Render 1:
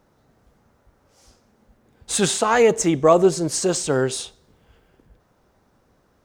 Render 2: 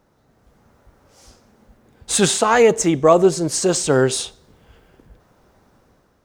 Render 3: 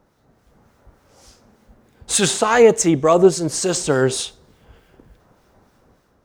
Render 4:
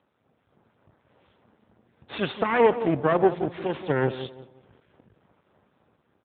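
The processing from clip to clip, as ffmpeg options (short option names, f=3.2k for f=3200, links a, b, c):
-af "dynaudnorm=f=210:g=5:m=6dB"
-filter_complex "[0:a]acrossover=split=1500[a][b];[a]aeval=exprs='val(0)*(1-0.5/2+0.5/2*cos(2*PI*3.4*n/s))':c=same[c];[b]aeval=exprs='val(0)*(1-0.5/2-0.5/2*cos(2*PI*3.4*n/s))':c=same[d];[c][d]amix=inputs=2:normalize=0,volume=2.5dB"
-filter_complex "[0:a]asplit=2[a][b];[b]adelay=175,lowpass=f=830:p=1,volume=-10dB,asplit=2[c][d];[d]adelay=175,lowpass=f=830:p=1,volume=0.35,asplit=2[e][f];[f]adelay=175,lowpass=f=830:p=1,volume=0.35,asplit=2[g][h];[h]adelay=175,lowpass=f=830:p=1,volume=0.35[i];[a][c][e][g][i]amix=inputs=5:normalize=0,aeval=exprs='max(val(0),0)':c=same,volume=-3dB" -ar 8000 -c:a libopencore_amrnb -b:a 10200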